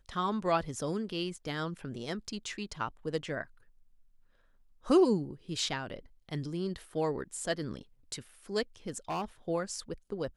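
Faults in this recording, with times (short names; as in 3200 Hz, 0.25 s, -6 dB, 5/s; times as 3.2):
8.88–9.25 clipped -30.5 dBFS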